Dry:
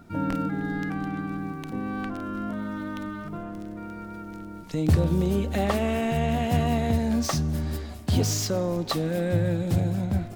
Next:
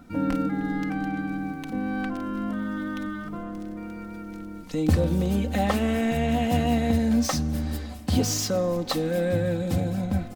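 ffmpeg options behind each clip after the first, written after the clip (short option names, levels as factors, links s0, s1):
-af "aecho=1:1:3.9:0.58"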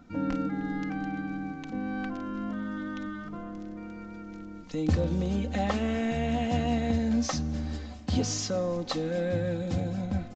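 -af "aresample=16000,aresample=44100,volume=0.596"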